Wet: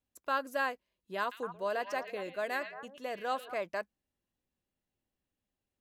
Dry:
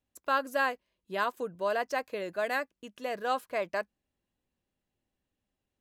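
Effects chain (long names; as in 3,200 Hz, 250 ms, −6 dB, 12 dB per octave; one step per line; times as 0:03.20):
0:01.20–0:03.54: echo through a band-pass that steps 113 ms, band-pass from 2,800 Hz, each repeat −1.4 octaves, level −5 dB
level −4 dB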